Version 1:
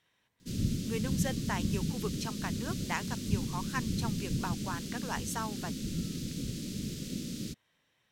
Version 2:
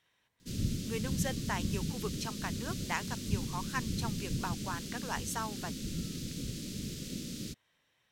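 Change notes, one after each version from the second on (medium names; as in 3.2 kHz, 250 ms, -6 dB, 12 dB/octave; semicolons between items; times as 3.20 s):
master: add peaking EQ 210 Hz -3.5 dB 1.8 oct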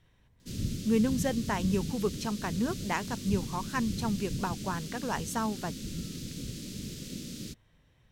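speech: remove high-pass 1.2 kHz 6 dB/octave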